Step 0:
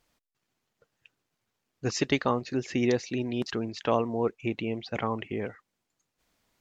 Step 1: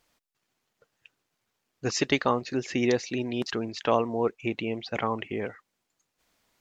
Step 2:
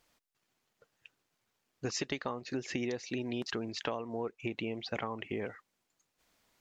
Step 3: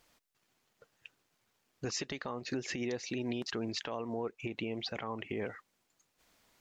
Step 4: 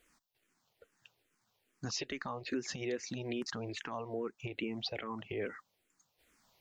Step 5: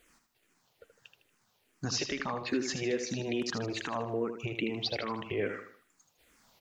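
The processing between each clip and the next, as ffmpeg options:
ffmpeg -i in.wav -af "lowshelf=frequency=280:gain=-5.5,volume=3dB" out.wav
ffmpeg -i in.wav -af "acompressor=threshold=-30dB:ratio=16,volume=-1.5dB" out.wav
ffmpeg -i in.wav -af "alimiter=level_in=5.5dB:limit=-24dB:level=0:latency=1:release=122,volume=-5.5dB,volume=3.5dB" out.wav
ffmpeg -i in.wav -filter_complex "[0:a]asplit=2[link_01][link_02];[link_02]afreqshift=-2.4[link_03];[link_01][link_03]amix=inputs=2:normalize=1,volume=1.5dB" out.wav
ffmpeg -i in.wav -af "aecho=1:1:78|156|234|312:0.398|0.155|0.0606|0.0236,volume=5dB" out.wav

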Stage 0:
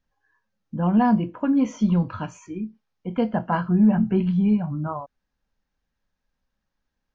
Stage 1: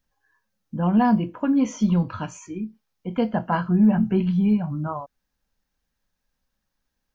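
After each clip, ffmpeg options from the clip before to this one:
ffmpeg -i in.wav -af "highshelf=frequency=5400:gain=10.5" out.wav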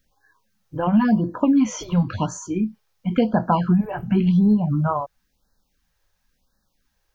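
ffmpeg -i in.wav -af "acompressor=threshold=-23dB:ratio=3,afftfilt=real='re*(1-between(b*sr/1024,200*pow(2700/200,0.5+0.5*sin(2*PI*0.95*pts/sr))/1.41,200*pow(2700/200,0.5+0.5*sin(2*PI*0.95*pts/sr))*1.41))':imag='im*(1-between(b*sr/1024,200*pow(2700/200,0.5+0.5*sin(2*PI*0.95*pts/sr))/1.41,200*pow(2700/200,0.5+0.5*sin(2*PI*0.95*pts/sr))*1.41))':win_size=1024:overlap=0.75,volume=8dB" out.wav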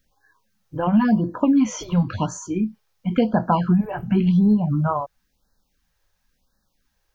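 ffmpeg -i in.wav -af anull out.wav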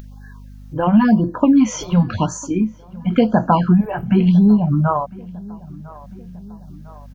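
ffmpeg -i in.wav -filter_complex "[0:a]aeval=exprs='val(0)+0.00355*(sin(2*PI*50*n/s)+sin(2*PI*2*50*n/s)/2+sin(2*PI*3*50*n/s)/3+sin(2*PI*4*50*n/s)/4+sin(2*PI*5*50*n/s)/5)':channel_layout=same,asplit=2[link_01][link_02];[link_02]adelay=1002,lowpass=frequency=1800:poles=1,volume=-22dB,asplit=2[link_03][link_04];[link_04]adelay=1002,lowpass=frequency=1800:poles=1,volume=0.46,asplit=2[link_05][link_06];[link_06]adelay=1002,lowpass=frequency=1800:poles=1,volume=0.46[link_07];[link_01][link_03][link_05][link_07]amix=inputs=4:normalize=0,acompressor=mode=upward:threshold=-34dB:ratio=2.5,volume=4.5dB" out.wav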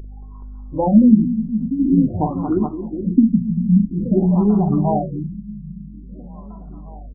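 ffmpeg -i in.wav -af "flanger=delay=2.6:depth=1.2:regen=25:speed=0.43:shape=sinusoidal,aecho=1:1:44|227|423|873:0.398|0.335|0.398|0.112,afftfilt=real='re*lt(b*sr/1024,220*pow(1500/220,0.5+0.5*sin(2*PI*0.49*pts/sr)))':imag='im*lt(b*sr/1024,220*pow(1500/220,0.5+0.5*sin(2*PI*0.49*pts/sr)))':win_size=1024:overlap=0.75,volume=4.5dB" out.wav

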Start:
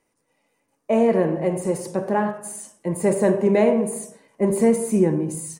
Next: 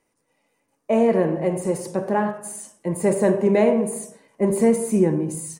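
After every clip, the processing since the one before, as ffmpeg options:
ffmpeg -i in.wav -af anull out.wav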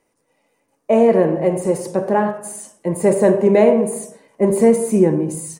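ffmpeg -i in.wav -af "equalizer=frequency=530:width=0.92:gain=3.5,volume=2.5dB" out.wav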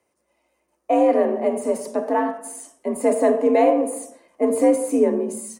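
ffmpeg -i in.wav -af "afreqshift=61,volume=-4dB" out.wav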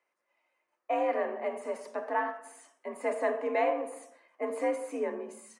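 ffmpeg -i in.wav -af "bandpass=frequency=1700:width_type=q:width=1.1:csg=0,volume=-2dB" out.wav

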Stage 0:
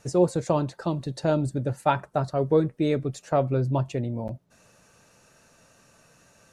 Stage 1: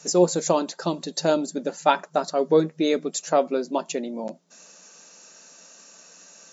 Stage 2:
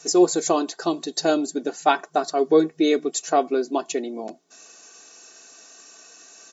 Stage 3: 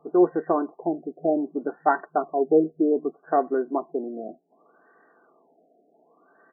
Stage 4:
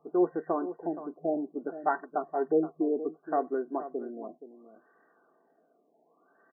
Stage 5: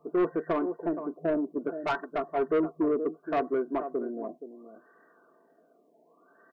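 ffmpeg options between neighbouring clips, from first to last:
ffmpeg -i in.wav -af "afftfilt=real='re*between(b*sr/4096,160,7500)':imag='im*between(b*sr/4096,160,7500)':win_size=4096:overlap=0.75,bass=frequency=250:gain=-5,treble=frequency=4000:gain=14,volume=3.5dB" out.wav
ffmpeg -i in.wav -af "aecho=1:1:2.7:0.73" out.wav
ffmpeg -i in.wav -af "afftfilt=real='re*lt(b*sr/1024,740*pow(2000/740,0.5+0.5*sin(2*PI*0.65*pts/sr)))':imag='im*lt(b*sr/1024,740*pow(2000/740,0.5+0.5*sin(2*PI*0.65*pts/sr)))':win_size=1024:overlap=0.75,volume=-2dB" out.wav
ffmpeg -i in.wav -af "aecho=1:1:472:0.224,volume=-7dB" out.wav
ffmpeg -i in.wav -af "asoftclip=type=tanh:threshold=-25.5dB,asuperstop=centerf=790:order=4:qfactor=6.3,volume=5dB" out.wav

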